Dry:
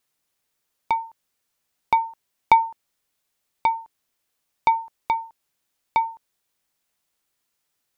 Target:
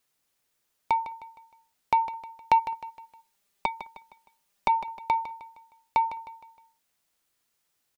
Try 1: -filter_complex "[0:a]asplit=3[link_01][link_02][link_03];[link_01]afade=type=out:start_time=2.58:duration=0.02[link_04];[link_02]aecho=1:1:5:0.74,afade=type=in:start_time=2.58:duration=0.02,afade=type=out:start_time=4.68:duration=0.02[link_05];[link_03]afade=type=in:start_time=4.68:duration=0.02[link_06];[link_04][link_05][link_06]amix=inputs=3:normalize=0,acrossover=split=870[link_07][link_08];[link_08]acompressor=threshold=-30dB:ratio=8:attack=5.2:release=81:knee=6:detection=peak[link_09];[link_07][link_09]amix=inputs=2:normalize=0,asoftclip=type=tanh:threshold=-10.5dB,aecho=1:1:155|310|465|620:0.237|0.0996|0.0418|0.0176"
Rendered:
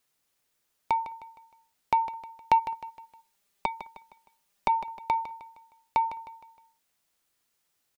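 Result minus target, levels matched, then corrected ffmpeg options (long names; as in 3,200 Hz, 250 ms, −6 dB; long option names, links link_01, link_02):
downward compressor: peak gain reduction +5 dB
-filter_complex "[0:a]asplit=3[link_01][link_02][link_03];[link_01]afade=type=out:start_time=2.58:duration=0.02[link_04];[link_02]aecho=1:1:5:0.74,afade=type=in:start_time=2.58:duration=0.02,afade=type=out:start_time=4.68:duration=0.02[link_05];[link_03]afade=type=in:start_time=4.68:duration=0.02[link_06];[link_04][link_05][link_06]amix=inputs=3:normalize=0,acrossover=split=870[link_07][link_08];[link_08]acompressor=threshold=-24dB:ratio=8:attack=5.2:release=81:knee=6:detection=peak[link_09];[link_07][link_09]amix=inputs=2:normalize=0,asoftclip=type=tanh:threshold=-10.5dB,aecho=1:1:155|310|465|620:0.237|0.0996|0.0418|0.0176"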